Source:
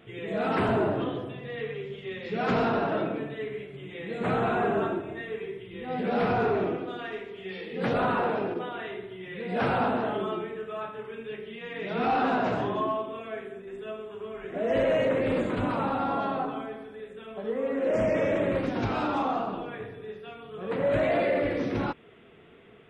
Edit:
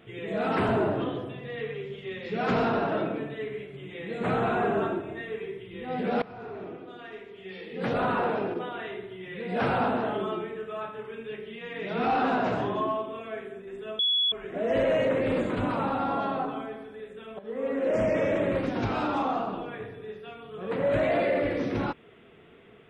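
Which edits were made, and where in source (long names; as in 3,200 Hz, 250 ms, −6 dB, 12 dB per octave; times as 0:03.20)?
0:06.22–0:08.24: fade in, from −22 dB
0:13.99–0:14.32: beep over 3,380 Hz −21.5 dBFS
0:17.39–0:17.67: fade in, from −13.5 dB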